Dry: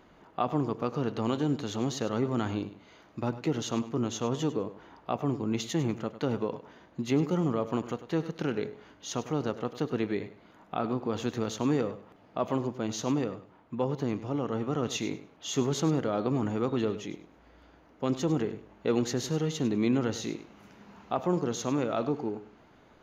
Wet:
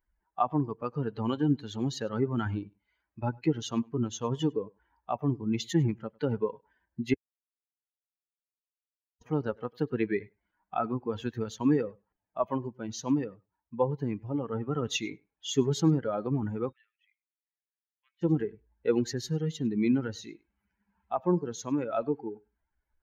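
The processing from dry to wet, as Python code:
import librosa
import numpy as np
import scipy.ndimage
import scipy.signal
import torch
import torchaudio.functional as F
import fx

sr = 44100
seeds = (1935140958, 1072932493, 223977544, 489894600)

y = fx.ladder_bandpass(x, sr, hz=2400.0, resonance_pct=40, at=(16.71, 18.21), fade=0.02)
y = fx.edit(y, sr, fx.silence(start_s=7.14, length_s=2.07), tone=tone)
y = fx.bin_expand(y, sr, power=2.0)
y = fx.rider(y, sr, range_db=4, speed_s=2.0)
y = fx.high_shelf(y, sr, hz=6400.0, db=-7.5)
y = y * librosa.db_to_amplitude(6.5)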